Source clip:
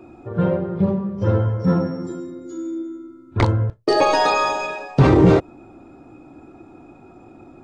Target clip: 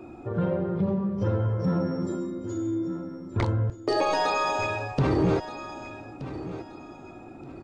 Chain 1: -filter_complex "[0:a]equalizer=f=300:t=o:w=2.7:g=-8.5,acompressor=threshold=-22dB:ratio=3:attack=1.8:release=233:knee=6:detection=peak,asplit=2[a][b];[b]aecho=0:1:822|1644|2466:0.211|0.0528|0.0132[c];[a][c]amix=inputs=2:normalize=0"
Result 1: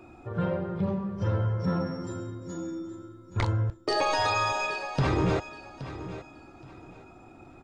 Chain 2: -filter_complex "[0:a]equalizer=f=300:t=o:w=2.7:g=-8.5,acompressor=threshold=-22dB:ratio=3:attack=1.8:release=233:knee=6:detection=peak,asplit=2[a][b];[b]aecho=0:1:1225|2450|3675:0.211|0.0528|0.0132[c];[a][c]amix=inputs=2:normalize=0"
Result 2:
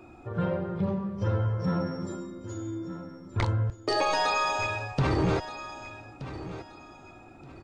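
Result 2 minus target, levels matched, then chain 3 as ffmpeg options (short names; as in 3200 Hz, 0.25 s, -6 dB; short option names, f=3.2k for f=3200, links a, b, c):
250 Hz band -2.5 dB
-filter_complex "[0:a]acompressor=threshold=-22dB:ratio=3:attack=1.8:release=233:knee=6:detection=peak,asplit=2[a][b];[b]aecho=0:1:1225|2450|3675:0.211|0.0528|0.0132[c];[a][c]amix=inputs=2:normalize=0"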